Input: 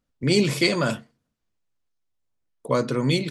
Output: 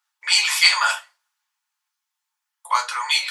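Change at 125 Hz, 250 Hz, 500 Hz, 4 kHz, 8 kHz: under -40 dB, under -40 dB, -20.5 dB, +9.5 dB, +10.5 dB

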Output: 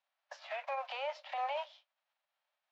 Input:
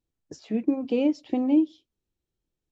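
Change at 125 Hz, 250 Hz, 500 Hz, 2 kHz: n/a, under -40 dB, -11.0 dB, +3.0 dB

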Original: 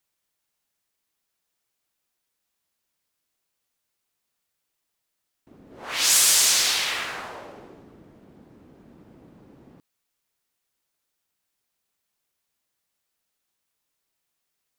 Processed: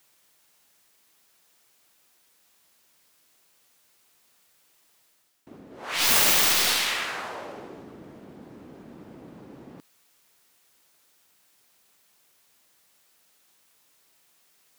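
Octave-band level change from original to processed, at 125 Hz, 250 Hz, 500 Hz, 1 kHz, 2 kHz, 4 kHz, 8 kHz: +4.5, +5.5, +4.0, +3.0, +1.0, -2.5, -6.5 dB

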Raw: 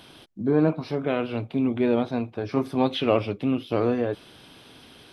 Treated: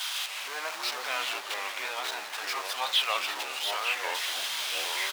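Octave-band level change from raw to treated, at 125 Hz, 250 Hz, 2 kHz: under -40 dB, -32.0 dB, +8.0 dB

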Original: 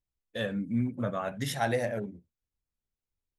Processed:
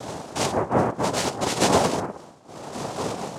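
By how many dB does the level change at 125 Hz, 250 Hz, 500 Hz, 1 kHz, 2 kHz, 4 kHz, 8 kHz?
+4.5, +5.5, +9.0, +13.0, +5.5, +13.0, +17.0 dB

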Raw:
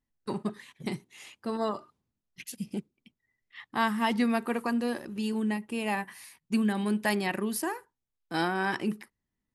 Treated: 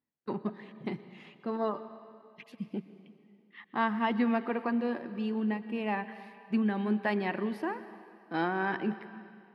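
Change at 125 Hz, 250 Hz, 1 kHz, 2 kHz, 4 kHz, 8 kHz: n/a, -1.5 dB, -1.5 dB, -3.0 dB, -8.0 dB, under -25 dB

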